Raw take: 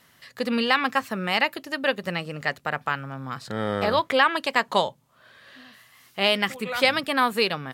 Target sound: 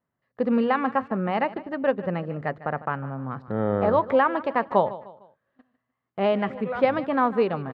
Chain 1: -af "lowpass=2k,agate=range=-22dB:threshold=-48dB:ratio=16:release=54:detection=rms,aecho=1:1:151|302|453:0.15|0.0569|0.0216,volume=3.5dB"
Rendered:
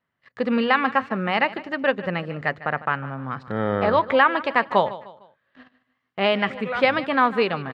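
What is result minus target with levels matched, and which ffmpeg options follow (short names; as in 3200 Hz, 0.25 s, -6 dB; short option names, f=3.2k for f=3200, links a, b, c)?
2000 Hz band +6.5 dB
-af "lowpass=940,agate=range=-22dB:threshold=-48dB:ratio=16:release=54:detection=rms,aecho=1:1:151|302|453:0.15|0.0569|0.0216,volume=3.5dB"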